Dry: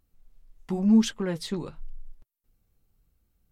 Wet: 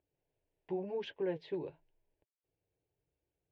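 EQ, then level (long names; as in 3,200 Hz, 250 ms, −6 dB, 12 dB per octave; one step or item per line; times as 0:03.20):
loudspeaker in its box 220–2,200 Hz, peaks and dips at 220 Hz −4 dB, 340 Hz −3 dB, 510 Hz −6 dB, 750 Hz −7 dB, 1,100 Hz −5 dB, 2,000 Hz −7 dB
phaser with its sweep stopped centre 530 Hz, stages 4
+3.0 dB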